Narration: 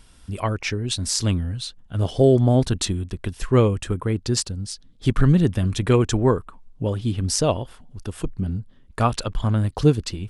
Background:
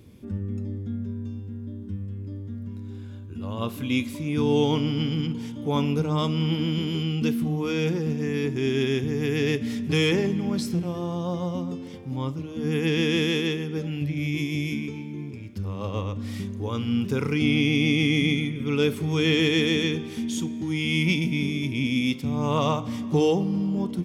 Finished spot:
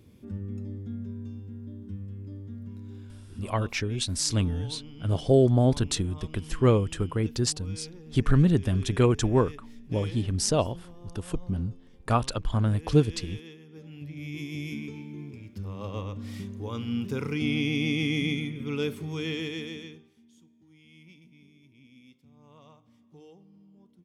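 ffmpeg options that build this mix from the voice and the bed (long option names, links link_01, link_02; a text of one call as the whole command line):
ffmpeg -i stem1.wav -i stem2.wav -filter_complex "[0:a]adelay=3100,volume=-4dB[link_01];[1:a]volume=10dB,afade=type=out:start_time=2.97:duration=0.86:silence=0.16788,afade=type=in:start_time=13.66:duration=1.27:silence=0.177828,afade=type=out:start_time=18.56:duration=1.58:silence=0.0530884[link_02];[link_01][link_02]amix=inputs=2:normalize=0" out.wav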